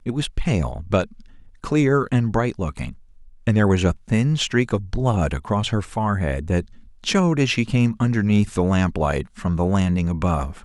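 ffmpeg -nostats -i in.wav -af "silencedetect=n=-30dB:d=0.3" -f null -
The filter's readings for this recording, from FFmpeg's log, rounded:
silence_start: 1.04
silence_end: 1.64 | silence_duration: 0.59
silence_start: 2.91
silence_end: 3.47 | silence_duration: 0.56
silence_start: 6.61
silence_end: 7.04 | silence_duration: 0.42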